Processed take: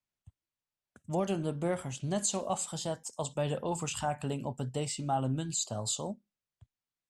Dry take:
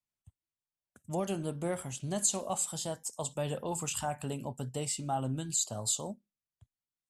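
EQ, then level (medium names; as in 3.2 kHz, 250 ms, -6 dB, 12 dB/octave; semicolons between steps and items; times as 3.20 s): distance through air 61 m; +2.5 dB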